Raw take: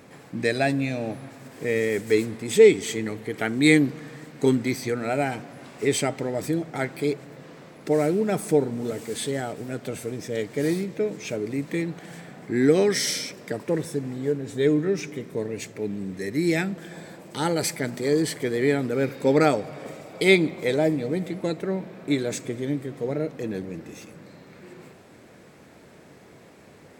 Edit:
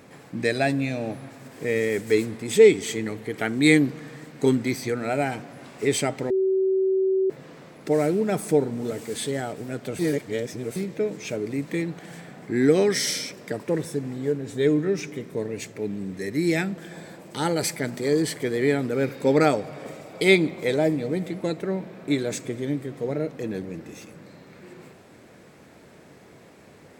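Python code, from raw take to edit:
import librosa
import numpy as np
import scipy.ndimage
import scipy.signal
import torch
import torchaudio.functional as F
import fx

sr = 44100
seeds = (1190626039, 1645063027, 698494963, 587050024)

y = fx.edit(x, sr, fx.bleep(start_s=6.3, length_s=1.0, hz=381.0, db=-18.5),
    fx.reverse_span(start_s=9.99, length_s=0.77), tone=tone)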